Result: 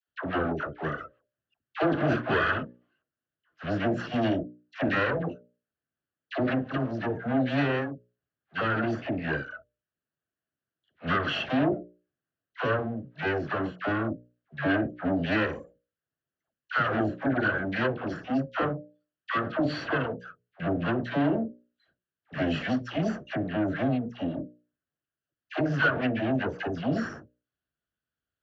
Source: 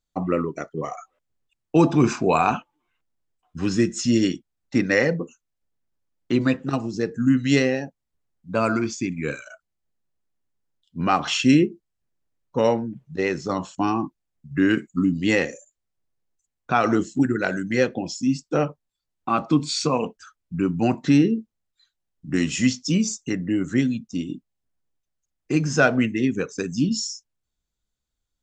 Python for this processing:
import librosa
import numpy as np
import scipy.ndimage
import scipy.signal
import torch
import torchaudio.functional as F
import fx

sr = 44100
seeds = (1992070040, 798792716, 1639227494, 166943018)

y = fx.lower_of_two(x, sr, delay_ms=0.69)
y = fx.hum_notches(y, sr, base_hz=60, count=10)
y = fx.tube_stage(y, sr, drive_db=24.0, bias=0.55)
y = fx.cabinet(y, sr, low_hz=120.0, low_slope=12, high_hz=3200.0, hz=(200.0, 650.0, 960.0, 1600.0, 2400.0), db=(-5, 9, -7, 5, -4))
y = fx.dispersion(y, sr, late='lows', ms=87.0, hz=810.0)
y = y * 10.0 ** (3.0 / 20.0)